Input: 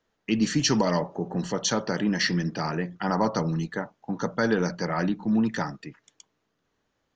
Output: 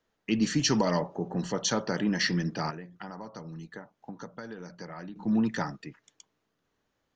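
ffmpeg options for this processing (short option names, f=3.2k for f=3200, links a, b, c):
-filter_complex "[0:a]asettb=1/sr,asplit=3[a][b][c];[a]atrim=end=2.704[d];[b]atrim=start=2.7:end=5.16,asetpts=PTS-STARTPTS,afade=t=in:d=0.004:c=qsin,afade=t=out:st=2.456:d=0.004:c=qsin,acompressor=threshold=-37dB:ratio=6[e];[c]atrim=start=5.156[f];[d][e]acrossfade=d=0.004:c1=hsin:c2=qsin[g];[g][f]acrossfade=d=0.004:c1=qsin:c2=hsin,volume=-2.5dB"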